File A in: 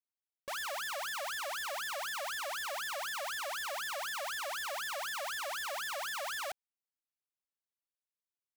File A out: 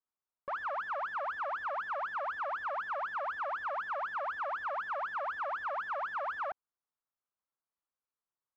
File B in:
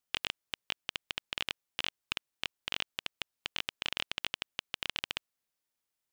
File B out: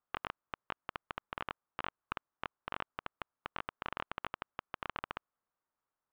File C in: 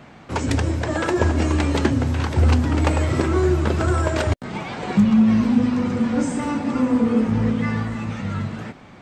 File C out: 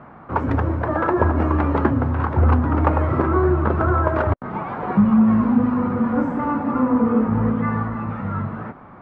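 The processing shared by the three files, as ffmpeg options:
-af "lowpass=f=1.2k:t=q:w=2.3"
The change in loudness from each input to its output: +1.0, -7.0, +0.5 LU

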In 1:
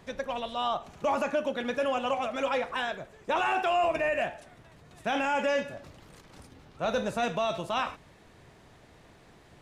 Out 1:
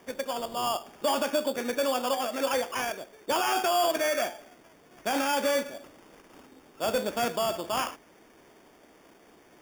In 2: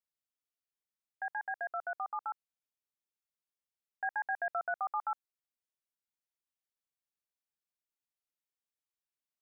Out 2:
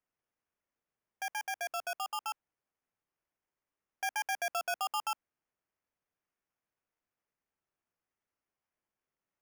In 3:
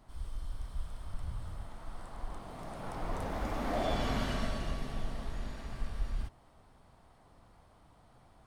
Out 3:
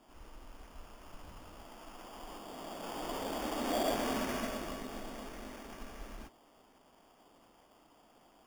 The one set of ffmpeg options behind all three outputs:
-af "lowshelf=f=180:t=q:w=1.5:g=-14,acrusher=samples=11:mix=1:aa=0.000001"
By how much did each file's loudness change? +1.0, +1.0, +0.5 LU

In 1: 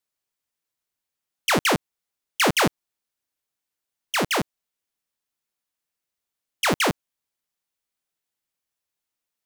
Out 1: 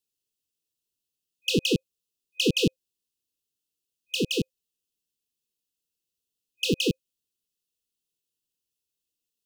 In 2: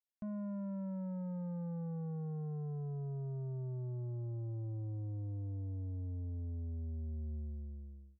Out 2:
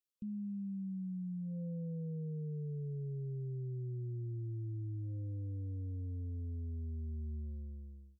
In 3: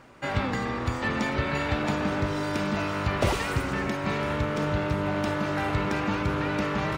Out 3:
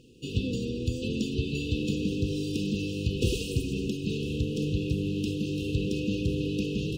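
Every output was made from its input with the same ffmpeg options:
-filter_complex "[0:a]afftfilt=real='re*(1-between(b*sr/4096,520,2500))':imag='im*(1-between(b*sr/4096,520,2500))':win_size=4096:overlap=0.75,acrossover=split=5600[a][b];[b]acompressor=threshold=-37dB:ratio=4:attack=1:release=60[c];[a][c]amix=inputs=2:normalize=0"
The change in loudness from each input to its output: -4.0, 0.0, -2.5 LU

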